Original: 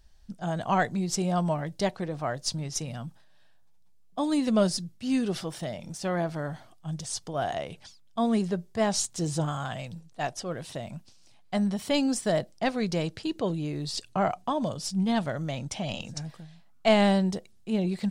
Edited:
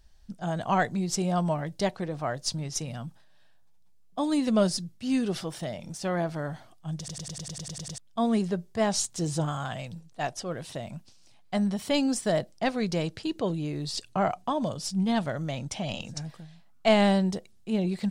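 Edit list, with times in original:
6.98 stutter in place 0.10 s, 10 plays

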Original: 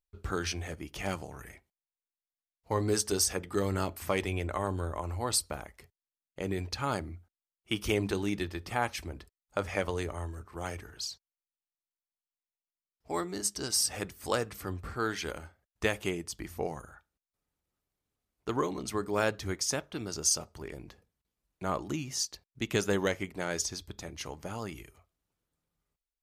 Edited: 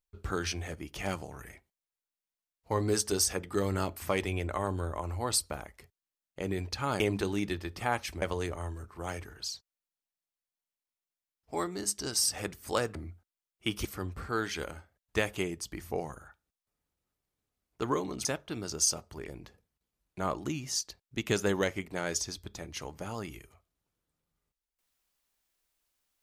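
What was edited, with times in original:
7–7.9 move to 14.52
9.12–9.79 cut
18.92–19.69 cut

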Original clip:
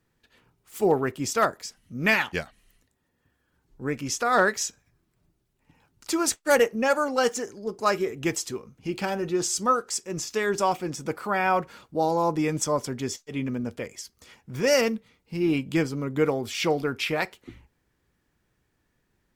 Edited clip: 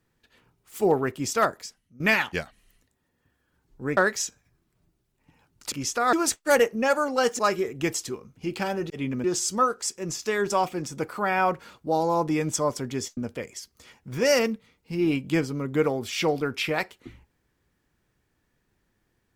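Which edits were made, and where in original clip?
1.61–2 fade out quadratic, to -17 dB
3.97–4.38 move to 6.13
7.39–7.81 cut
13.25–13.59 move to 9.32

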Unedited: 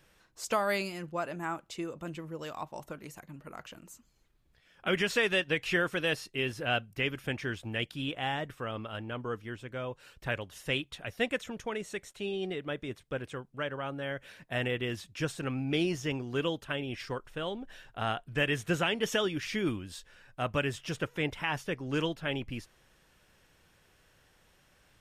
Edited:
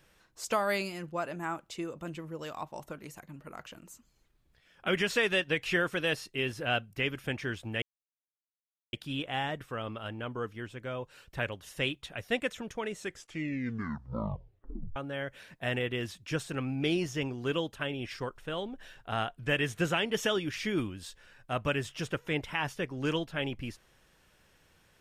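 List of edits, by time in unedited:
7.82 insert silence 1.11 s
11.85 tape stop 2.00 s

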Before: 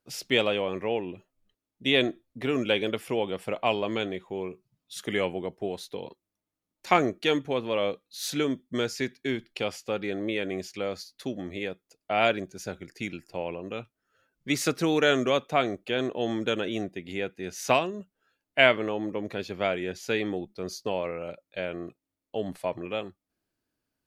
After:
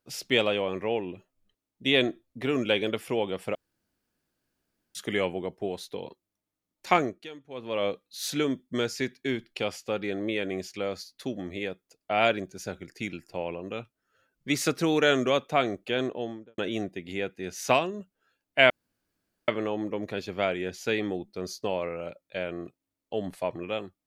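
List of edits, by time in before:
3.55–4.95 room tone
6.91–7.86 dip -19 dB, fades 0.38 s
15.97–16.58 studio fade out
18.7 insert room tone 0.78 s

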